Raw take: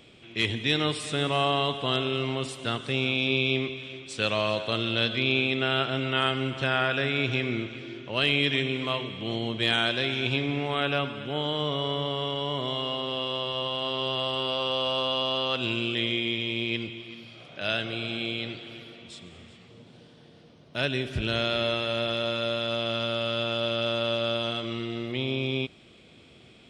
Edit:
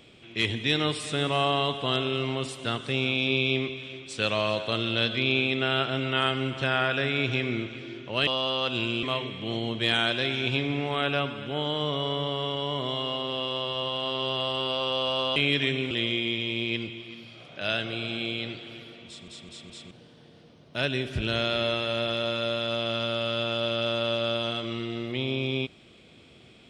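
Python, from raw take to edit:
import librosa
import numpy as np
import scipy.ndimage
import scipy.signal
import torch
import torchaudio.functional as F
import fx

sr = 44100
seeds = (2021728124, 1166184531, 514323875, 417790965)

y = fx.edit(x, sr, fx.swap(start_s=8.27, length_s=0.55, other_s=15.15, other_length_s=0.76),
    fx.stutter_over(start_s=19.07, slice_s=0.21, count=4), tone=tone)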